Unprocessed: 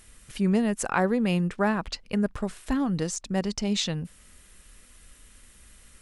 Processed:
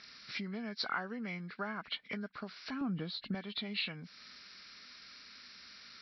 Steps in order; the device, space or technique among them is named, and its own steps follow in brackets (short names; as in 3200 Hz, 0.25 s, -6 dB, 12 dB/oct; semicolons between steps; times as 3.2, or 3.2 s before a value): hearing aid with frequency lowering (nonlinear frequency compression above 1500 Hz 1.5:1; compressor 4:1, threshold -37 dBFS, peak gain reduction 15.5 dB; speaker cabinet 250–5200 Hz, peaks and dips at 350 Hz -7 dB, 520 Hz -9 dB, 860 Hz -5 dB, 1400 Hz +6 dB, 2200 Hz +5 dB, 4100 Hz +8 dB); 2.81–3.35 tilt -3 dB/oct; gain +1 dB